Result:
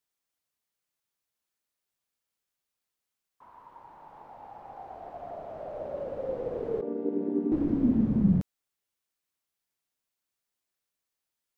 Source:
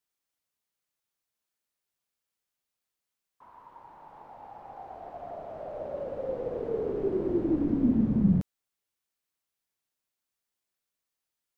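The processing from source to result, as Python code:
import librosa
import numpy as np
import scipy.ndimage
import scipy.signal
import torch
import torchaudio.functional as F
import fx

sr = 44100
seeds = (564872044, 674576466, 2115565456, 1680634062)

y = fx.chord_vocoder(x, sr, chord='minor triad', root=55, at=(6.81, 7.52))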